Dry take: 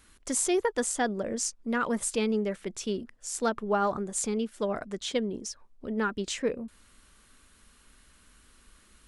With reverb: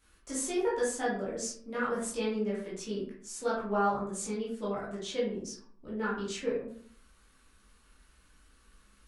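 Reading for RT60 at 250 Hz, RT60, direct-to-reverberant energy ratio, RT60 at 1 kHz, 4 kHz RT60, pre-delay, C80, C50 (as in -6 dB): 0.65 s, 0.55 s, -8.5 dB, 0.50 s, 0.30 s, 12 ms, 8.0 dB, 3.0 dB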